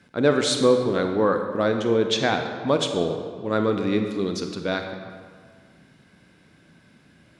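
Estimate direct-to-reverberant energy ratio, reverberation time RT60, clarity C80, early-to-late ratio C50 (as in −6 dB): 5.0 dB, 1.8 s, 7.5 dB, 6.0 dB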